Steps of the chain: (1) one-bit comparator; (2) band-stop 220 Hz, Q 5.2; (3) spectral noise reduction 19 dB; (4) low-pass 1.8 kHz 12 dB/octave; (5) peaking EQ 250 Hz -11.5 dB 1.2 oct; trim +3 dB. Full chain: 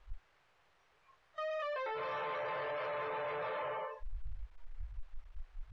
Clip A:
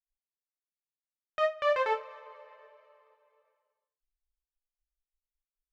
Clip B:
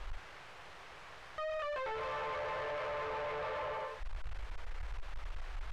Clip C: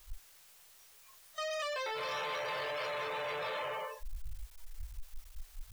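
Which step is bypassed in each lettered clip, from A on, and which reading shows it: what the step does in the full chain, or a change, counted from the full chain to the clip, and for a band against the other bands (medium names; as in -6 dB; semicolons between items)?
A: 1, crest factor change +12.5 dB; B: 3, 125 Hz band +2.5 dB; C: 4, 4 kHz band +11.0 dB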